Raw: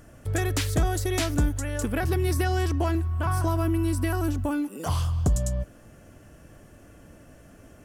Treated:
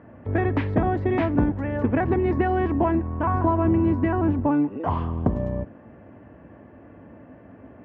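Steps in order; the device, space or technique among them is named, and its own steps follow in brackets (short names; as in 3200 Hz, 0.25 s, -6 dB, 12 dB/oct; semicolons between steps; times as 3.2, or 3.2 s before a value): sub-octave bass pedal (octaver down 1 oct, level -2 dB; speaker cabinet 79–2000 Hz, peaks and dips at 83 Hz -6 dB, 140 Hz -9 dB, 250 Hz +4 dB, 930 Hz +5 dB, 1400 Hz -7 dB); gain +5 dB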